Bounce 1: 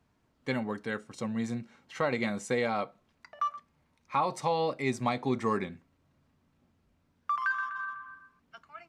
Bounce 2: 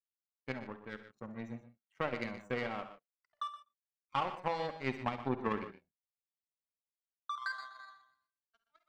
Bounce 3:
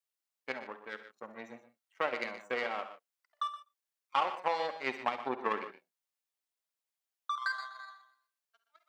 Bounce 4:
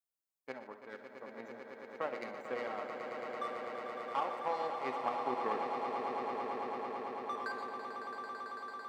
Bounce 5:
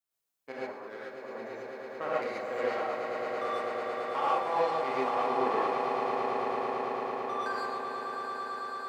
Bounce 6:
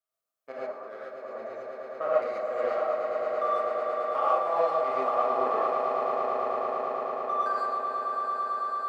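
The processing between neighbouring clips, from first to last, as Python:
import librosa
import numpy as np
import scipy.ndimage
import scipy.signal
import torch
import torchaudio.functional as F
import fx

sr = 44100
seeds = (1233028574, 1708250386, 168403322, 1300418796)

y1 = fx.spec_topn(x, sr, count=32)
y1 = fx.power_curve(y1, sr, exponent=2.0)
y1 = fx.echo_multitap(y1, sr, ms=(51, 65, 70, 122, 148), db=(-16.5, -17.0, -17.0, -13.0, -17.5))
y1 = F.gain(torch.from_numpy(y1), -1.0).numpy()
y2 = scipy.signal.sosfilt(scipy.signal.butter(2, 460.0, 'highpass', fs=sr, output='sos'), y1)
y2 = F.gain(torch.from_numpy(y2), 4.5).numpy()
y3 = fx.peak_eq(y2, sr, hz=2900.0, db=-10.0, octaves=2.2)
y3 = fx.echo_swell(y3, sr, ms=111, loudest=8, wet_db=-9.5)
y3 = F.gain(torch.from_numpy(y3), -2.5).numpy()
y4 = fx.rev_gated(y3, sr, seeds[0], gate_ms=160, shape='rising', drr_db=-6.5)
y5 = fx.small_body(y4, sr, hz=(630.0, 1200.0), ring_ms=25, db=16)
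y5 = F.gain(torch.from_numpy(y5), -6.0).numpy()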